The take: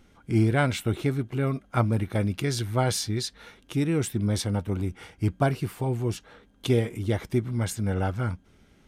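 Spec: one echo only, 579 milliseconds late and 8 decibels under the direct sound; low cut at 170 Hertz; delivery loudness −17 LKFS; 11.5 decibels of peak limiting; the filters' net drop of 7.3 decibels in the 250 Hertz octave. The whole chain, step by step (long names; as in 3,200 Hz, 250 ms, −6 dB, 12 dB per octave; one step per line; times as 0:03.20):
high-pass filter 170 Hz
parametric band 250 Hz −8.5 dB
brickwall limiter −21 dBFS
single-tap delay 579 ms −8 dB
level +17 dB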